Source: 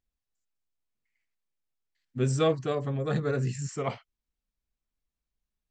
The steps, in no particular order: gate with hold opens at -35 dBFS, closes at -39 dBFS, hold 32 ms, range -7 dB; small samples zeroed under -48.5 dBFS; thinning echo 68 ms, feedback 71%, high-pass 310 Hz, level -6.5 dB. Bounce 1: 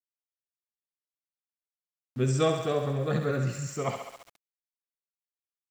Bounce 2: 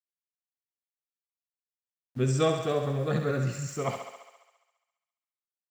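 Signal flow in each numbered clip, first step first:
gate with hold > thinning echo > small samples zeroed; small samples zeroed > gate with hold > thinning echo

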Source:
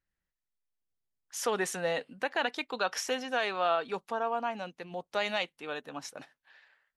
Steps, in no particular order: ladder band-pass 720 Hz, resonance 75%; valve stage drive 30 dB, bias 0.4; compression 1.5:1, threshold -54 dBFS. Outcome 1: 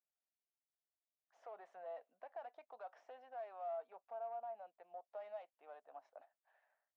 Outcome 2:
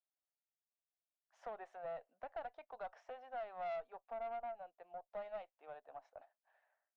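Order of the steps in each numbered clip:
valve stage > compression > ladder band-pass; ladder band-pass > valve stage > compression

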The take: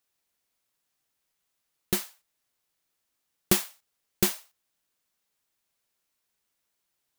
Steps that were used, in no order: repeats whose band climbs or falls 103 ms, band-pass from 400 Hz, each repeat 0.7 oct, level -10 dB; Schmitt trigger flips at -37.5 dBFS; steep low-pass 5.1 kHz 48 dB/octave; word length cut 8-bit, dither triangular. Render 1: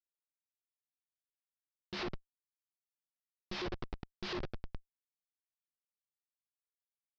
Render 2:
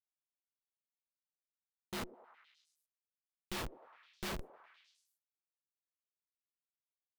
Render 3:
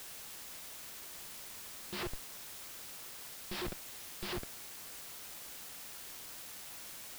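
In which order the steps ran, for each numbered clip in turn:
repeats whose band climbs or falls > word length cut > Schmitt trigger > steep low-pass; steep low-pass > word length cut > Schmitt trigger > repeats whose band climbs or falls; repeats whose band climbs or falls > Schmitt trigger > steep low-pass > word length cut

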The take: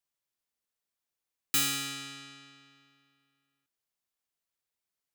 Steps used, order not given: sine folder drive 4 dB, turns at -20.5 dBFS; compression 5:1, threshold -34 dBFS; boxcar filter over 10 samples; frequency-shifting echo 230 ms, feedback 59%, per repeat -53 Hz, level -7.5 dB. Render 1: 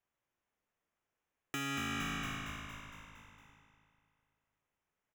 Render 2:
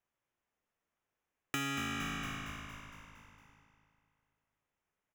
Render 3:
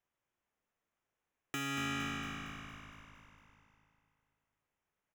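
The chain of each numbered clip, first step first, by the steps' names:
frequency-shifting echo > compression > sine folder > boxcar filter; boxcar filter > sine folder > frequency-shifting echo > compression; compression > sine folder > boxcar filter > frequency-shifting echo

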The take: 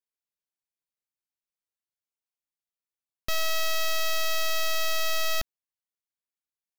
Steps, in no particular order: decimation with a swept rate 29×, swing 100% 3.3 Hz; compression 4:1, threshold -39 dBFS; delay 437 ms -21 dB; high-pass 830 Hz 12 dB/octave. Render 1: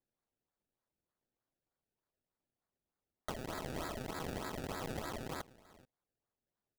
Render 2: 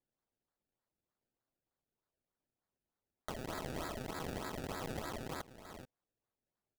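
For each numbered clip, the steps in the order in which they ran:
high-pass > compression > delay > decimation with a swept rate; delay > compression > high-pass > decimation with a swept rate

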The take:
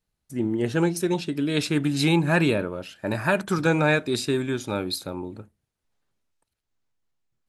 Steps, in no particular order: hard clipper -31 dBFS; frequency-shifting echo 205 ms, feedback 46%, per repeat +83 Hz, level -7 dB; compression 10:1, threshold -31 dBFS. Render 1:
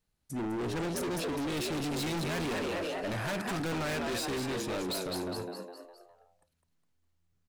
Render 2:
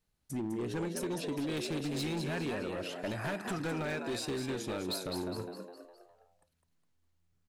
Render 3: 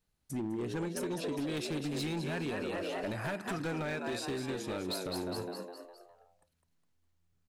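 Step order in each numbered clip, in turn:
frequency-shifting echo > hard clipper > compression; compression > frequency-shifting echo > hard clipper; frequency-shifting echo > compression > hard clipper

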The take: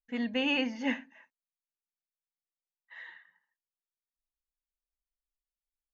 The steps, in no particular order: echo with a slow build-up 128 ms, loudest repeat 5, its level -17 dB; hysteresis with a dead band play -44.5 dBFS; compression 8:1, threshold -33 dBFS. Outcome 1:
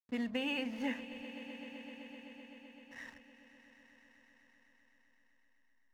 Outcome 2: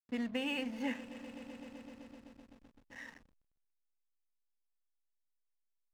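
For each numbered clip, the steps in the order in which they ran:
hysteresis with a dead band > compression > echo with a slow build-up; compression > echo with a slow build-up > hysteresis with a dead band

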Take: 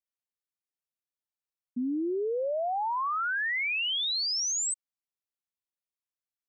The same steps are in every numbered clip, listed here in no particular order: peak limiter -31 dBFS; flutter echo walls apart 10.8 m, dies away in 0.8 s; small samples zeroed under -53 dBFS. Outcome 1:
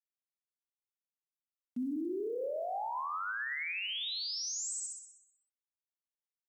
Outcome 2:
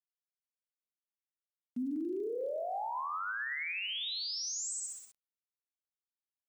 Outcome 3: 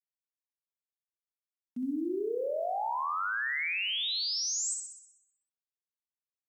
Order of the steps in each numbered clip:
small samples zeroed > flutter echo > peak limiter; flutter echo > small samples zeroed > peak limiter; small samples zeroed > peak limiter > flutter echo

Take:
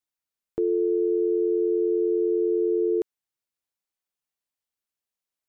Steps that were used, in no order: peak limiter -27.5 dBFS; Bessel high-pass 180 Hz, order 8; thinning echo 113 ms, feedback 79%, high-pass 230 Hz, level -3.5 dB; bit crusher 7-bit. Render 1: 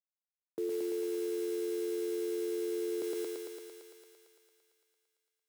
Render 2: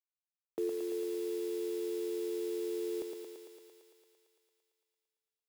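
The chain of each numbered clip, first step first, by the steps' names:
bit crusher > thinning echo > peak limiter > Bessel high-pass; Bessel high-pass > bit crusher > peak limiter > thinning echo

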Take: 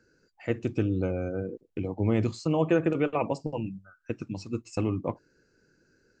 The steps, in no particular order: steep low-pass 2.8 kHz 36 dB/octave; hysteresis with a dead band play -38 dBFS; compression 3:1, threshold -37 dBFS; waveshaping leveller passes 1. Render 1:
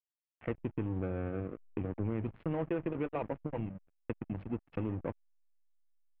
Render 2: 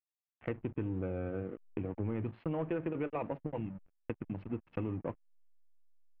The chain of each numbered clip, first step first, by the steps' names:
compression > hysteresis with a dead band > waveshaping leveller > steep low-pass; hysteresis with a dead band > waveshaping leveller > steep low-pass > compression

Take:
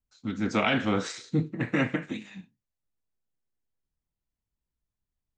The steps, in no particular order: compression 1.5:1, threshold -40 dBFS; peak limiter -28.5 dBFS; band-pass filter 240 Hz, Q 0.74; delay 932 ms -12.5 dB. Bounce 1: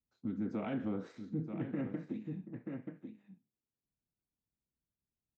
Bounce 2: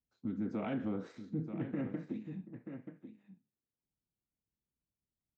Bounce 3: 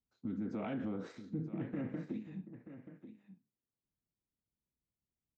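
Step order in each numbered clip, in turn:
delay > compression > band-pass filter > peak limiter; band-pass filter > compression > delay > peak limiter; band-pass filter > peak limiter > compression > delay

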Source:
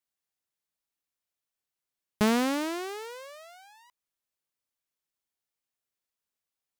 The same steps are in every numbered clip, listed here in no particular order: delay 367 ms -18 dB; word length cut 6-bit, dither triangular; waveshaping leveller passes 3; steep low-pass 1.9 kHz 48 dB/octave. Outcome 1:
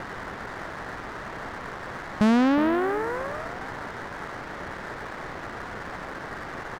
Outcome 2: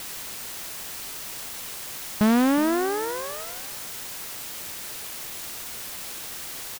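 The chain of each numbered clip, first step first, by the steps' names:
delay > word length cut > steep low-pass > waveshaping leveller; steep low-pass > waveshaping leveller > delay > word length cut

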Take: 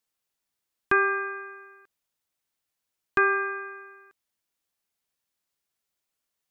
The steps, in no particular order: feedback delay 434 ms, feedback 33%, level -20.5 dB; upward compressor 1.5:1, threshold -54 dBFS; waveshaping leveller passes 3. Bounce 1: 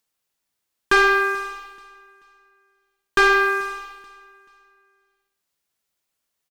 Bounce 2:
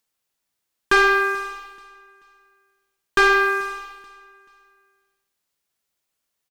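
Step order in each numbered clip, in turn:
waveshaping leveller > feedback delay > upward compressor; waveshaping leveller > upward compressor > feedback delay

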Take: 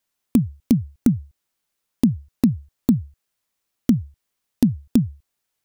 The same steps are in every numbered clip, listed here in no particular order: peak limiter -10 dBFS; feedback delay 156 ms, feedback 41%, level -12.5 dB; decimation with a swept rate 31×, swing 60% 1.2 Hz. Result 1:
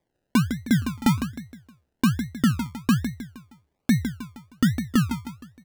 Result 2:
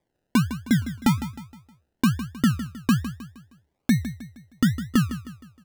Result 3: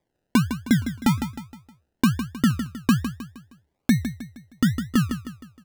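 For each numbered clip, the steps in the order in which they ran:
feedback delay > peak limiter > decimation with a swept rate; peak limiter > decimation with a swept rate > feedback delay; decimation with a swept rate > feedback delay > peak limiter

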